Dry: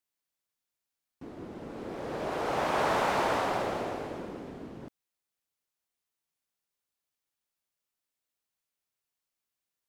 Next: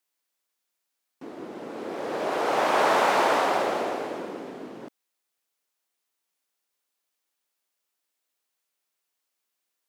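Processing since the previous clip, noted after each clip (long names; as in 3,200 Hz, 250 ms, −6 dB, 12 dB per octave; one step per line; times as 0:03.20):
high-pass filter 280 Hz 12 dB per octave
level +6.5 dB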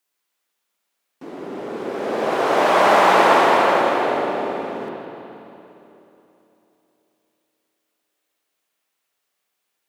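echo with a time of its own for lows and highs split 890 Hz, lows 356 ms, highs 162 ms, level −12.5 dB
spring reverb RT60 2.9 s, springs 54/59 ms, chirp 40 ms, DRR −2.5 dB
level +3.5 dB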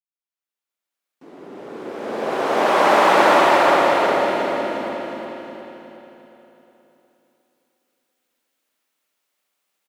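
fade in at the beginning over 2.87 s
on a send: repeating echo 360 ms, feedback 48%, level −3.5 dB
on the sum: level −1 dB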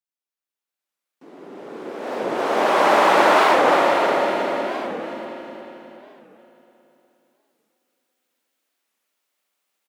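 high-pass filter 140 Hz 12 dB per octave
wow of a warped record 45 rpm, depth 250 cents
level −1 dB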